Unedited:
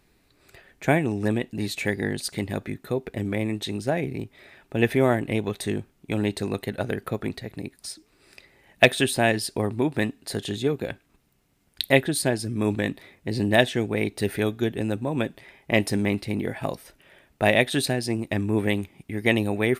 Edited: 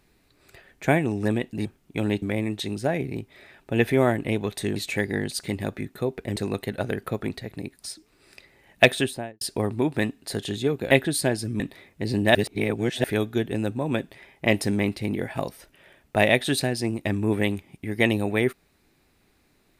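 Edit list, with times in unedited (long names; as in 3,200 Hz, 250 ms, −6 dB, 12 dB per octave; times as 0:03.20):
0:01.65–0:03.25: swap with 0:05.79–0:06.36
0:08.90–0:09.41: fade out and dull
0:10.91–0:11.92: remove
0:12.61–0:12.86: remove
0:13.61–0:14.30: reverse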